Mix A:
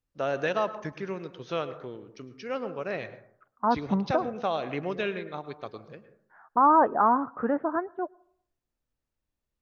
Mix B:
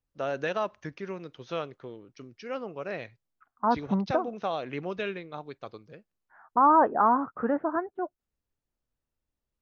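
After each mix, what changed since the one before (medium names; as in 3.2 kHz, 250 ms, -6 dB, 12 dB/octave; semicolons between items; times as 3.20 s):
reverb: off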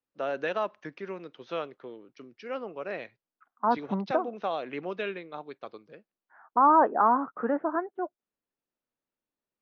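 master: add three-band isolator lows -22 dB, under 180 Hz, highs -16 dB, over 4.9 kHz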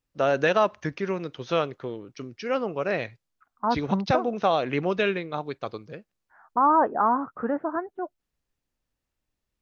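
first voice +8.5 dB; master: remove three-band isolator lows -22 dB, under 180 Hz, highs -16 dB, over 4.9 kHz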